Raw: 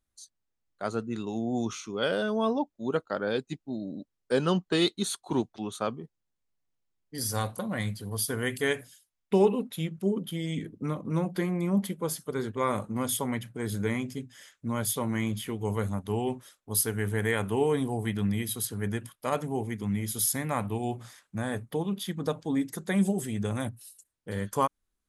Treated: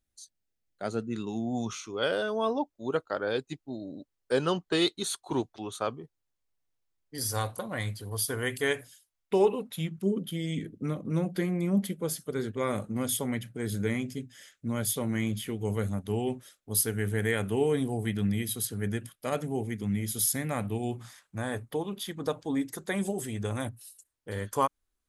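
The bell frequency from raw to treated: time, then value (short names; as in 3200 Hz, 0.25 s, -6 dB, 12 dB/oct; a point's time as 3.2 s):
bell -9 dB 0.55 oct
0.98 s 1100 Hz
1.89 s 200 Hz
9.53 s 200 Hz
10.2 s 990 Hz
20.83 s 990 Hz
21.4 s 180 Hz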